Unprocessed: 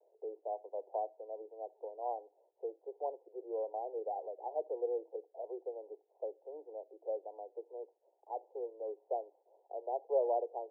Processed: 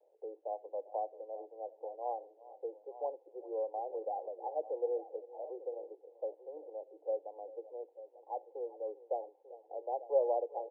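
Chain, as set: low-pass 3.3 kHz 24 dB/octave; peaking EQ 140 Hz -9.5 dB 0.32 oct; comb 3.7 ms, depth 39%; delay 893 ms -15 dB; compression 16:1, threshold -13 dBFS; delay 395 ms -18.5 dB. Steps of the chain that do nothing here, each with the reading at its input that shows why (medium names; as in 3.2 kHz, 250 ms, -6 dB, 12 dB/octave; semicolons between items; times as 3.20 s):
low-pass 3.3 kHz: input has nothing above 1 kHz; peaking EQ 140 Hz: input has nothing below 300 Hz; compression, threshold -13 dBFS: peak at its input -19.5 dBFS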